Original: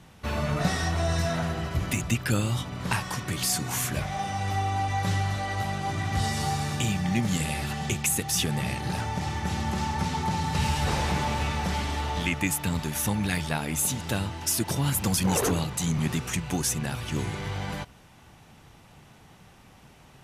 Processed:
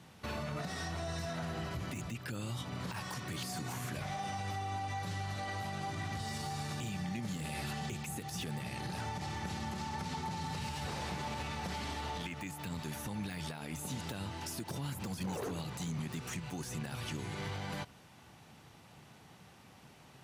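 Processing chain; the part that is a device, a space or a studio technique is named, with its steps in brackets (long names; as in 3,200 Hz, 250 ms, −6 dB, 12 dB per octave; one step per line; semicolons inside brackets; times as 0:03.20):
broadcast voice chain (high-pass filter 91 Hz 12 dB per octave; de-essing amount 70%; downward compressor, threshold −30 dBFS, peak gain reduction 10 dB; parametric band 4,400 Hz +3 dB 0.33 octaves; brickwall limiter −26 dBFS, peak gain reduction 9 dB)
level −4 dB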